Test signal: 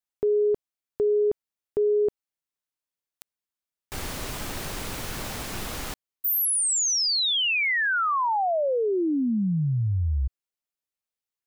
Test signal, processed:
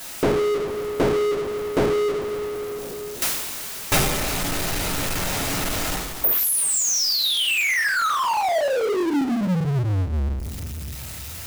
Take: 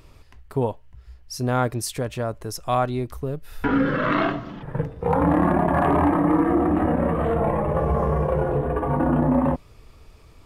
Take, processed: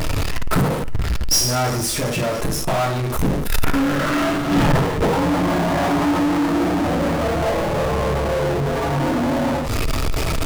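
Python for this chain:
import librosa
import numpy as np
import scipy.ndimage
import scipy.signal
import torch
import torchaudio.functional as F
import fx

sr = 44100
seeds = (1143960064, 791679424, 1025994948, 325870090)

y = fx.gate_flip(x, sr, shuts_db=-24.0, range_db=-28)
y = fx.rev_double_slope(y, sr, seeds[0], early_s=0.43, late_s=2.8, knee_db=-27, drr_db=-7.0)
y = fx.power_curve(y, sr, exponent=0.35)
y = y * 10.0 ** (5.5 / 20.0)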